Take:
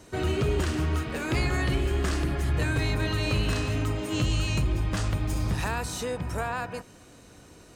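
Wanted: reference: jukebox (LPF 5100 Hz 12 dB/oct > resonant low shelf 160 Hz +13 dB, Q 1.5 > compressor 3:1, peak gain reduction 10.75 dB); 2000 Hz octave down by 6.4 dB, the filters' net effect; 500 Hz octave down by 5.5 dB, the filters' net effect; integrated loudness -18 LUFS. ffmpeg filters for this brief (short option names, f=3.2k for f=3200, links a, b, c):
-af "lowpass=5.1k,lowshelf=f=160:t=q:w=1.5:g=13,equalizer=f=500:t=o:g=-5,equalizer=f=2k:t=o:g=-8,acompressor=threshold=-21dB:ratio=3,volume=6dB"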